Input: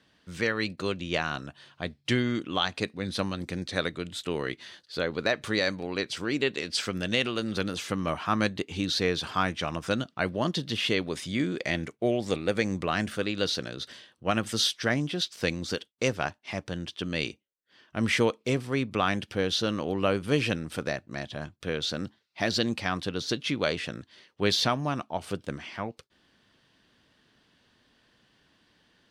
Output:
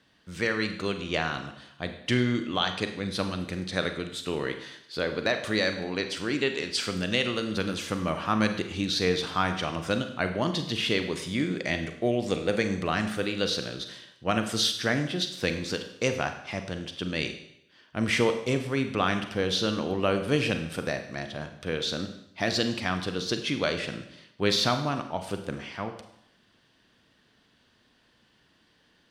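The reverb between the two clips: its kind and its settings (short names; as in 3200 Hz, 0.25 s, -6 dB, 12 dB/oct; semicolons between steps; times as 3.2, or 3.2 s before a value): Schroeder reverb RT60 0.77 s, combs from 33 ms, DRR 7 dB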